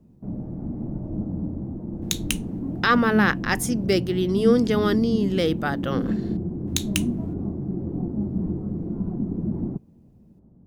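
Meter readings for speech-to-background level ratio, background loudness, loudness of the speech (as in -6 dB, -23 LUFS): 5.5 dB, -29.0 LUFS, -23.5 LUFS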